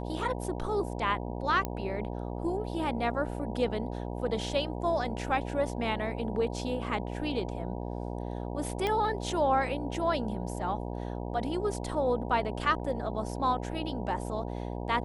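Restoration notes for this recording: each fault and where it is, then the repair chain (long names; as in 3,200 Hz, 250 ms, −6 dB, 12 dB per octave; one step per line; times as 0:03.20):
mains buzz 60 Hz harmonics 16 −36 dBFS
0:01.65: click −17 dBFS
0:08.87: click −17 dBFS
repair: click removal
hum removal 60 Hz, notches 16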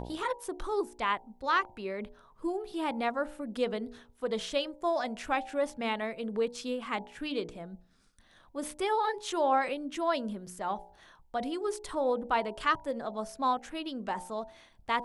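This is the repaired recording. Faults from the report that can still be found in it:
none of them is left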